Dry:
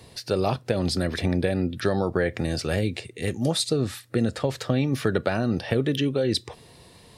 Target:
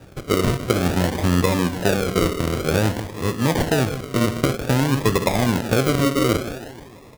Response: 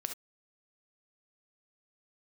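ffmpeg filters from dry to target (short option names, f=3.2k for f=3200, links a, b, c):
-filter_complex "[0:a]asuperstop=centerf=2300:order=4:qfactor=7.2,aecho=1:1:155|310|465|620|775|930:0.266|0.138|0.0719|0.0374|0.0195|0.0101,asplit=2[a][b];[1:a]atrim=start_sample=2205,atrim=end_sample=3087[c];[b][c]afir=irnorm=-1:irlink=0,volume=5dB[d];[a][d]amix=inputs=2:normalize=0,acrusher=samples=41:mix=1:aa=0.000001:lfo=1:lforange=24.6:lforate=0.53,volume=-4dB"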